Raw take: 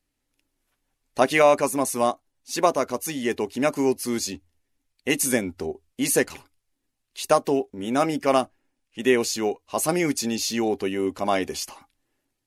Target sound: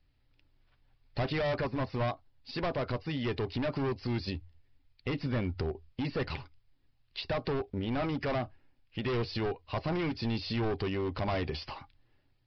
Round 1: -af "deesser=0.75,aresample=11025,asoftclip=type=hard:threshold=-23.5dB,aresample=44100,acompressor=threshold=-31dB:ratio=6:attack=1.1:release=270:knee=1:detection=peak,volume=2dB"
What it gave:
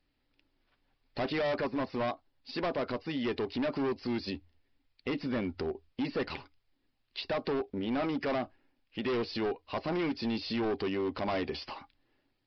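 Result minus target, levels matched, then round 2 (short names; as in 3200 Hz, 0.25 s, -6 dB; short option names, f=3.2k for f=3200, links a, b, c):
125 Hz band -9.0 dB
-af "deesser=0.75,aresample=11025,asoftclip=type=hard:threshold=-23.5dB,aresample=44100,acompressor=threshold=-31dB:ratio=6:attack=1.1:release=270:knee=1:detection=peak,lowshelf=f=170:t=q:w=1.5:g=9,volume=2dB"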